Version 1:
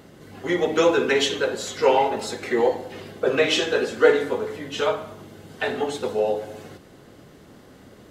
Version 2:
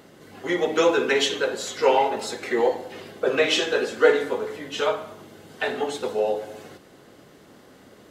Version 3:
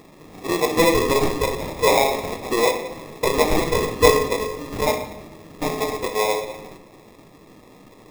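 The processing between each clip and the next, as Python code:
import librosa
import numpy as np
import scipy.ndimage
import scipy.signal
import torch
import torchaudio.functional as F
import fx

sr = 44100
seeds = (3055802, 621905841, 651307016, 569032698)

y1 = fx.low_shelf(x, sr, hz=150.0, db=-11.0)
y2 = fx.sample_hold(y1, sr, seeds[0], rate_hz=1500.0, jitter_pct=0)
y2 = fx.room_shoebox(y2, sr, seeds[1], volume_m3=480.0, walls='mixed', distance_m=0.5)
y2 = y2 * 10.0 ** (2.0 / 20.0)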